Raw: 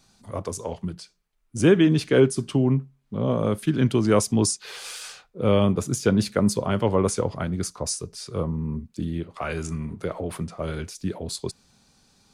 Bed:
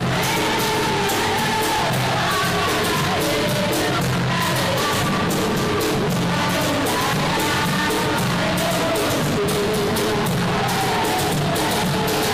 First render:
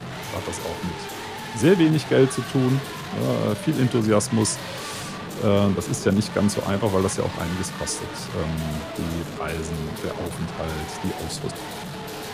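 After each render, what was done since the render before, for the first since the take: add bed -13.5 dB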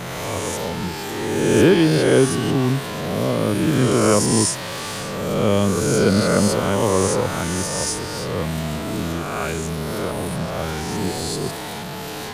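reverse spectral sustain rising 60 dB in 1.75 s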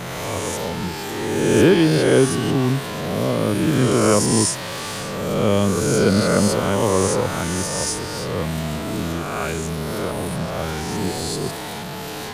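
no audible change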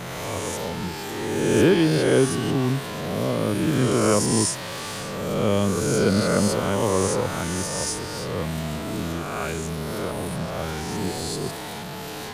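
trim -3.5 dB

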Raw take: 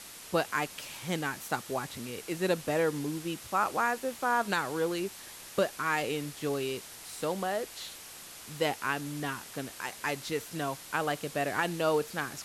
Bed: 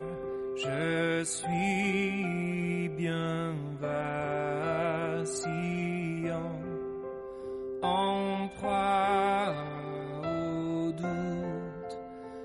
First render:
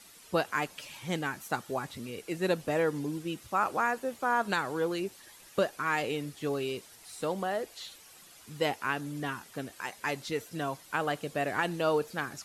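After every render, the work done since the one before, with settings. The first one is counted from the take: noise reduction 10 dB, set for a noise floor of -47 dBFS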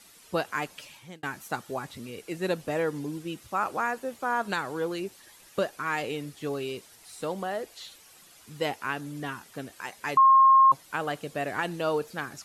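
0.79–1.23 s: fade out; 10.17–10.72 s: bleep 1.07 kHz -13.5 dBFS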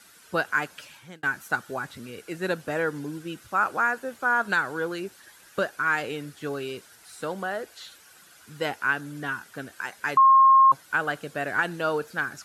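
high-pass 53 Hz; peaking EQ 1.5 kHz +11.5 dB 0.36 oct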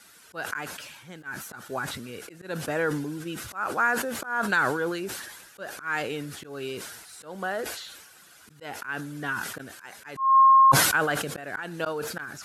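slow attack 216 ms; decay stretcher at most 45 dB/s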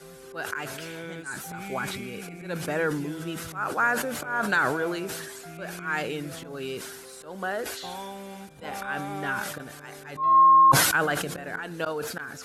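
add bed -9.5 dB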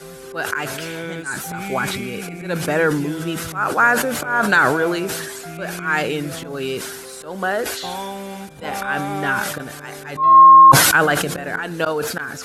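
trim +9 dB; peak limiter -2 dBFS, peak gain reduction 2.5 dB

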